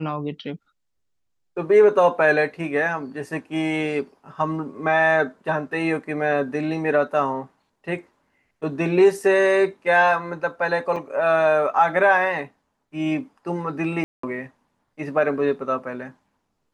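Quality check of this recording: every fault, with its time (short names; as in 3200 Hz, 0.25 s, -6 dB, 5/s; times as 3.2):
10.96 gap 4.1 ms
14.04–14.23 gap 0.194 s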